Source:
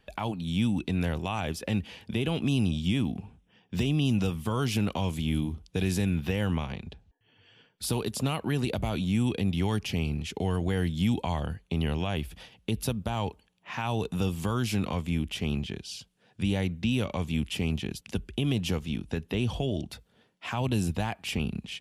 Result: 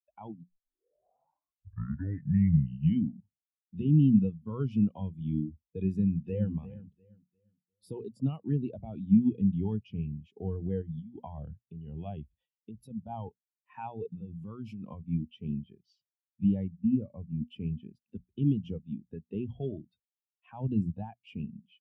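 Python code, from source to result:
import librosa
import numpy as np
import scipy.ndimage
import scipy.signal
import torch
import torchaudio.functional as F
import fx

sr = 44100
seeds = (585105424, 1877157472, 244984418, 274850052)

y = fx.echo_throw(x, sr, start_s=5.92, length_s=0.6, ms=350, feedback_pct=55, wet_db=-7.0)
y = fx.over_compress(y, sr, threshold_db=-30.0, ratio=-1.0, at=(10.82, 15.04))
y = fx.air_absorb(y, sr, metres=440.0, at=(16.77, 17.48))
y = fx.edit(y, sr, fx.tape_start(start_s=0.43, length_s=2.79), tone=tone)
y = fx.low_shelf(y, sr, hz=80.0, db=-9.5)
y = fx.hum_notches(y, sr, base_hz=60, count=4)
y = fx.spectral_expand(y, sr, expansion=2.5)
y = F.gain(torch.from_numpy(y), 3.0).numpy()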